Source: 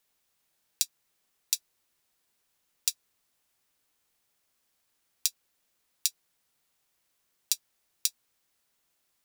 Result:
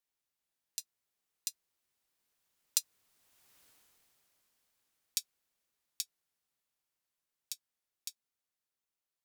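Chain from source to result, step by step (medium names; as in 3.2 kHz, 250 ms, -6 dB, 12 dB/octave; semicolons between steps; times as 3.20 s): Doppler pass-by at 3.62 s, 13 m/s, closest 3 m; trim +10 dB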